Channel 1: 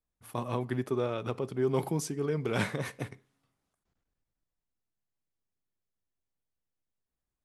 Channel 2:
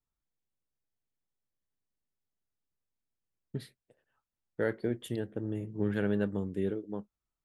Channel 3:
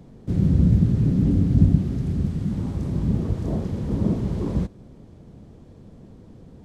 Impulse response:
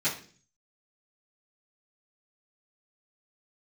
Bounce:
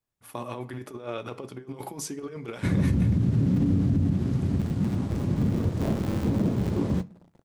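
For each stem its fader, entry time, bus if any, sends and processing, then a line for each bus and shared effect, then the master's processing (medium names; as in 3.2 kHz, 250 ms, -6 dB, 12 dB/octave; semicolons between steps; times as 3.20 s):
-0.5 dB, 0.00 s, send -18.5 dB, bass shelf 200 Hz -8.5 dB; compressor with a negative ratio -35 dBFS, ratio -0.5
-2.0 dB, 0.00 s, no send, inverse Chebyshev band-stop 830–9400 Hz, stop band 60 dB; polarity switched at an audio rate 120 Hz
+1.0 dB, 2.35 s, send -23 dB, high-pass 74 Hz 24 dB/octave; crossover distortion -42 dBFS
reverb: on, RT60 0.45 s, pre-delay 3 ms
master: peak limiter -15.5 dBFS, peak gain reduction 11.5 dB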